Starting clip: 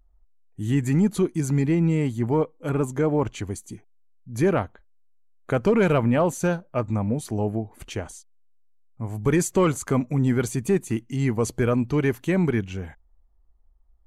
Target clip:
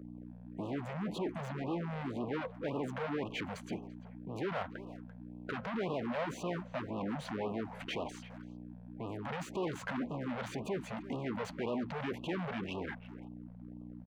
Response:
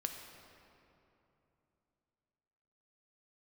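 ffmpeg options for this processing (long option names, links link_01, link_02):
-filter_complex "[0:a]asuperstop=centerf=1200:order=8:qfactor=6.7,highshelf=frequency=6400:gain=-5.5,asplit=2[link_01][link_02];[link_02]acompressor=threshold=-28dB:ratio=6,volume=0dB[link_03];[link_01][link_03]amix=inputs=2:normalize=0,alimiter=limit=-20dB:level=0:latency=1:release=13,aeval=exprs='val(0)+0.0112*(sin(2*PI*60*n/s)+sin(2*PI*2*60*n/s)/2+sin(2*PI*3*60*n/s)/3+sin(2*PI*4*60*n/s)/4+sin(2*PI*5*60*n/s)/5)':channel_layout=same,asoftclip=type=hard:threshold=-35dB,acrossover=split=170 3600:gain=0.0794 1 0.0708[link_04][link_05][link_06];[link_04][link_05][link_06]amix=inputs=3:normalize=0,asplit=2[link_07][link_08];[link_08]adelay=340,highpass=300,lowpass=3400,asoftclip=type=hard:threshold=-36.5dB,volume=-14dB[link_09];[link_07][link_09]amix=inputs=2:normalize=0,afftfilt=real='re*(1-between(b*sr/1024,300*pow(1800/300,0.5+0.5*sin(2*PI*1.9*pts/sr))/1.41,300*pow(1800/300,0.5+0.5*sin(2*PI*1.9*pts/sr))*1.41))':imag='im*(1-between(b*sr/1024,300*pow(1800/300,0.5+0.5*sin(2*PI*1.9*pts/sr))/1.41,300*pow(1800/300,0.5+0.5*sin(2*PI*1.9*pts/sr))*1.41))':win_size=1024:overlap=0.75,volume=3dB"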